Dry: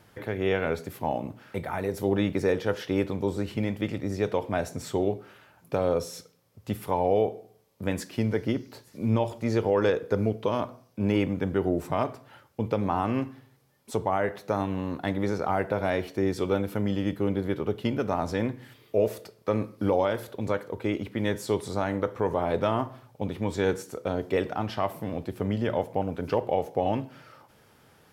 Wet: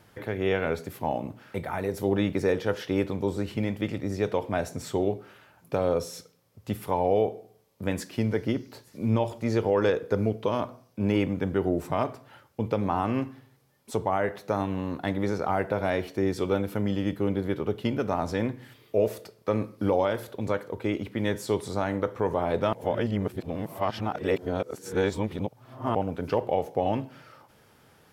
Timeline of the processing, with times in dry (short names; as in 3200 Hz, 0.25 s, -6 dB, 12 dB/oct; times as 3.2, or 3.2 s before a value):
22.73–25.95 reverse